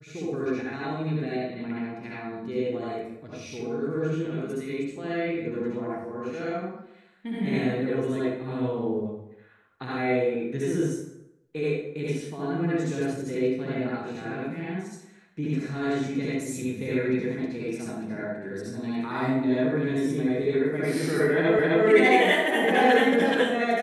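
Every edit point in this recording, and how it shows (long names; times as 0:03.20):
0:21.59: the same again, the last 0.26 s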